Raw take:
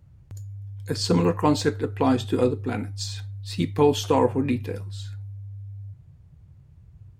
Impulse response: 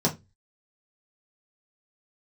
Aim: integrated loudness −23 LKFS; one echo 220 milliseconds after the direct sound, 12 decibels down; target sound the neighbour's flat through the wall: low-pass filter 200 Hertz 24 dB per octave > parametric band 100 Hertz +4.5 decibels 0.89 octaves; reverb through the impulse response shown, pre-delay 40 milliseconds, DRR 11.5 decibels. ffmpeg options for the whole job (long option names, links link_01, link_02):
-filter_complex "[0:a]aecho=1:1:220:0.251,asplit=2[link_01][link_02];[1:a]atrim=start_sample=2205,adelay=40[link_03];[link_02][link_03]afir=irnorm=-1:irlink=0,volume=-23dB[link_04];[link_01][link_04]amix=inputs=2:normalize=0,lowpass=frequency=200:width=0.5412,lowpass=frequency=200:width=1.3066,equalizer=frequency=100:width_type=o:width=0.89:gain=4.5,volume=2.5dB"